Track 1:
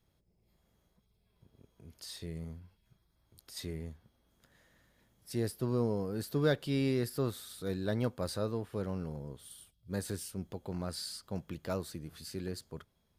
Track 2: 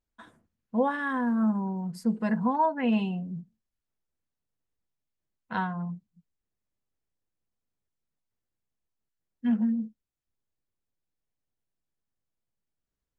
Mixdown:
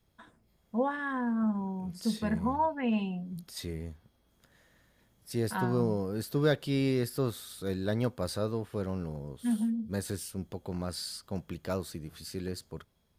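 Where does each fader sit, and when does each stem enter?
+2.5 dB, -4.0 dB; 0.00 s, 0.00 s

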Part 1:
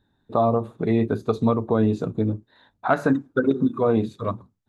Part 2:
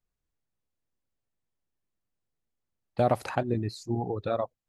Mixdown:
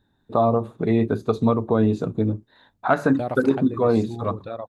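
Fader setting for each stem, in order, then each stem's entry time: +1.0 dB, -4.0 dB; 0.00 s, 0.20 s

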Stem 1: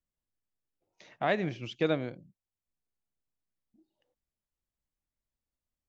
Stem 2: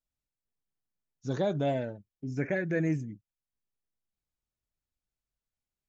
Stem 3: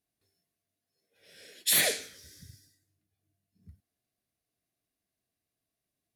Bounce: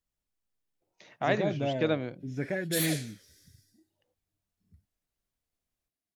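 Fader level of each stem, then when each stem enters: +0.5 dB, -2.0 dB, -7.5 dB; 0.00 s, 0.00 s, 1.05 s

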